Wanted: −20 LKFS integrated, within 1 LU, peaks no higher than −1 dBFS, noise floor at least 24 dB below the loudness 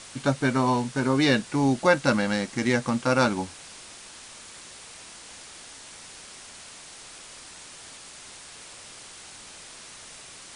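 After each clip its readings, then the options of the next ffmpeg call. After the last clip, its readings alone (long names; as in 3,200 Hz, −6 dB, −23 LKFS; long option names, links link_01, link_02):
background noise floor −45 dBFS; target noise floor −48 dBFS; integrated loudness −24.0 LKFS; sample peak −6.0 dBFS; target loudness −20.0 LKFS
→ -af "afftdn=noise_reduction=6:noise_floor=-45"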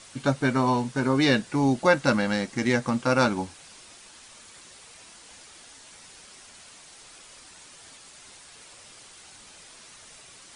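background noise floor −50 dBFS; integrated loudness −24.0 LKFS; sample peak −6.0 dBFS; target loudness −20.0 LKFS
→ -af "volume=4dB"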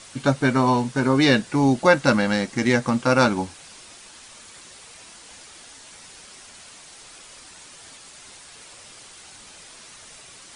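integrated loudness −20.0 LKFS; sample peak −2.0 dBFS; background noise floor −46 dBFS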